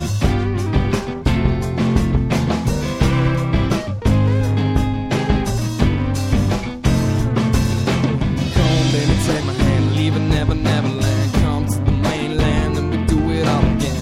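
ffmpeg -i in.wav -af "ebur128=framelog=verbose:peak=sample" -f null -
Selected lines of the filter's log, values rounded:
Integrated loudness:
  I:         -18.0 LUFS
  Threshold: -28.0 LUFS
Loudness range:
  LRA:         1.3 LU
  Threshold: -37.9 LUFS
  LRA low:   -18.5 LUFS
  LRA high:  -17.2 LUFS
Sample peak:
  Peak:       -1.6 dBFS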